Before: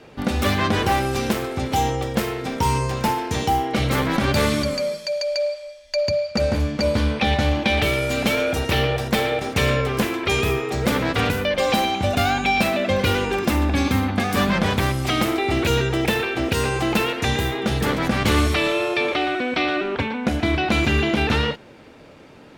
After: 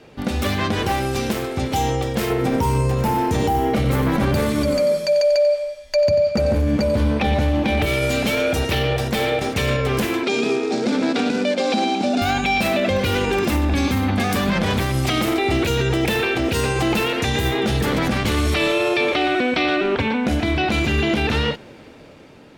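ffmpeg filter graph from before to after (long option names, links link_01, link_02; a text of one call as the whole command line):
ffmpeg -i in.wav -filter_complex "[0:a]asettb=1/sr,asplit=3[link_01][link_02][link_03];[link_01]atrim=end=2.304[link_04];[link_02]atrim=start=2.3:end=7.86,asetpts=PTS-STARTPTS,afade=type=in:duration=0.004:curve=qsin,afade=type=out:start_time=5.556:duration=0.004:curve=qsin,equalizer=frequency=4300:width=0.49:gain=-8.5,acontrast=46,aecho=1:1:92|184|276:0.299|0.0567|0.0108,atrim=end_sample=245196[link_05];[link_03]atrim=start=7.856[link_06];[link_04][link_05]acrossfade=duration=0.004:curve1=hsin:curve2=qsin[link_07];[link_07][link_06]acrossfade=duration=0.004:curve1=qsin:curve2=hsin,asettb=1/sr,asplit=3[link_08][link_09][link_10];[link_08]atrim=end=10.234[link_11];[link_09]atrim=start=10.23:end=12.22,asetpts=PTS-STARTPTS,afade=type=in:duration=0.004:curve=qsin,afade=type=out:start_time=1.986:duration=0.004:curve=qsin,acrusher=bits=3:mode=log:mix=0:aa=0.000001,highpass=frequency=220:width=0.5412,highpass=frequency=220:width=1.3066,equalizer=frequency=240:width_type=q:width=4:gain=9,equalizer=frequency=520:width_type=q:width=4:gain=-3,equalizer=frequency=1100:width_type=q:width=4:gain=-9,equalizer=frequency=1900:width_type=q:width=4:gain=-9,equalizer=frequency=3000:width_type=q:width=4:gain=-7,equalizer=frequency=6300:width_type=q:width=4:gain=-4,lowpass=frequency=6600:width=0.5412,lowpass=frequency=6600:width=1.3066[link_12];[link_10]atrim=start=12.216[link_13];[link_11][link_12]acrossfade=duration=0.004:curve1=hsin:curve2=qsin[link_14];[link_14][link_13]acrossfade=duration=0.004:curve1=qsin:curve2=hsin,equalizer=frequency=1200:width_type=o:width=1.5:gain=-2.5,dynaudnorm=framelen=650:gausssize=5:maxgain=9.5dB,alimiter=limit=-11.5dB:level=0:latency=1:release=54" out.wav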